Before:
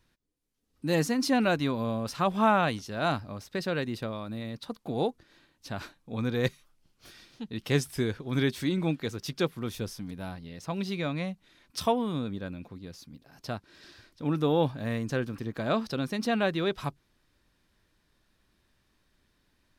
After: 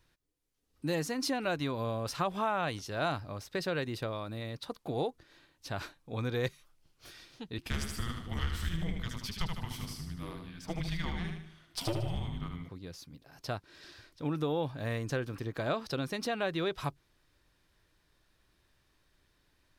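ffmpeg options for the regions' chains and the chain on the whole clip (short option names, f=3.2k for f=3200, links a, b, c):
-filter_complex "[0:a]asettb=1/sr,asplit=3[a][b][c];[a]atrim=end=7.584[d];[b]atrim=start=7.58:end=12.69,asetpts=PTS-STARTPTS,afade=t=in:d=0.004:c=qsin,afade=t=out:st=5.106:d=0.004:c=qsin,afreqshift=-350,aeval=exprs='(tanh(14.1*val(0)+0.55)-tanh(0.55))/14.1':c=same,aecho=1:1:76|152|228|304|380|456:0.562|0.253|0.114|0.0512|0.0231|0.0104,atrim=end_sample=225351[e];[c]atrim=start=12.686[f];[d][e]acrossfade=d=0.004:c1=hsin:c2=qsin[g];[g][f]acrossfade=d=0.004:c1=qsin:c2=hsin,acompressor=threshold=-27dB:ratio=6,equalizer=f=220:t=o:w=0.45:g=-8.5"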